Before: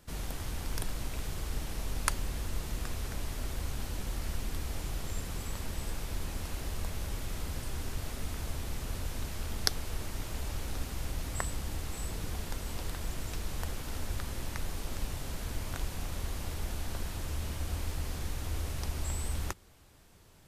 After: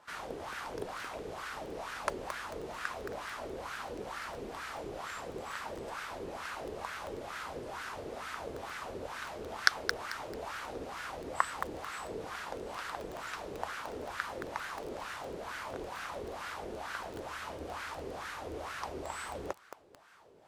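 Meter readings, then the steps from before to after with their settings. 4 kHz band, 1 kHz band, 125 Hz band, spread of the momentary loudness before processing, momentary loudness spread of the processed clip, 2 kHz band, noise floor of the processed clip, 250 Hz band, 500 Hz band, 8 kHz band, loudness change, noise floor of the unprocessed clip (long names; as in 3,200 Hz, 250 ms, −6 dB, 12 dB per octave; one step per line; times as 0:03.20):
−2.0 dB, +7.0 dB, −15.5 dB, 3 LU, 4 LU, +6.5 dB, −46 dBFS, −3.0 dB, +6.0 dB, −8.0 dB, −1.5 dB, −49 dBFS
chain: high-shelf EQ 2,400 Hz +9.5 dB
LFO wah 2.2 Hz 410–1,500 Hz, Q 3.3
feedback echo at a low word length 221 ms, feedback 35%, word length 8 bits, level −7.5 dB
level +11.5 dB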